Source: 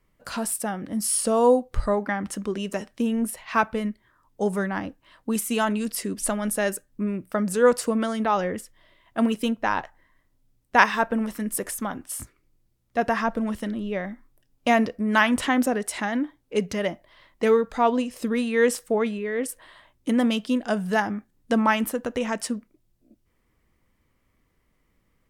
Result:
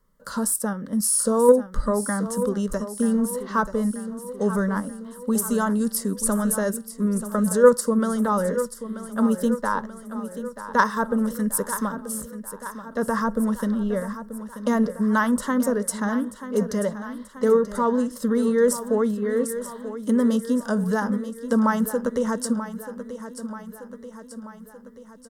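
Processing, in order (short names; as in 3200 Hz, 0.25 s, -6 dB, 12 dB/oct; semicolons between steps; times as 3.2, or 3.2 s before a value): dynamic EQ 2800 Hz, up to -7 dB, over -40 dBFS, Q 0.88; in parallel at +1 dB: level quantiser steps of 15 dB; on the sum: soft clip 0 dBFS, distortion -31 dB; fixed phaser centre 490 Hz, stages 8; on a send: feedback echo 0.934 s, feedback 57%, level -12 dB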